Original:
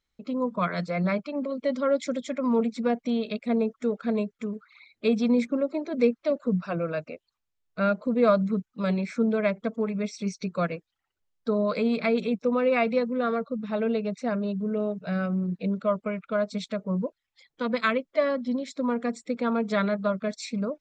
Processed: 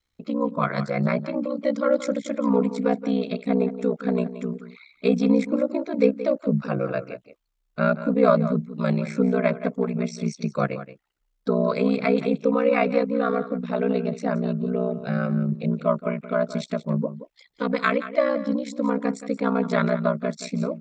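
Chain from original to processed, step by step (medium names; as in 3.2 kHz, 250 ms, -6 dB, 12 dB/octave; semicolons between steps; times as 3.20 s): ring modulator 31 Hz; echo from a far wall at 30 m, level -13 dB; dynamic bell 3.4 kHz, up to -4 dB, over -51 dBFS, Q 1.2; trim +6 dB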